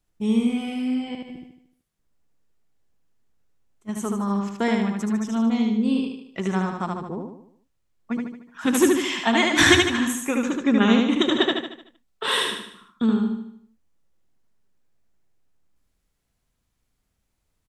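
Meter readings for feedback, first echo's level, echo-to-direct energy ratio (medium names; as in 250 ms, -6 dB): 47%, -3.0 dB, -2.0 dB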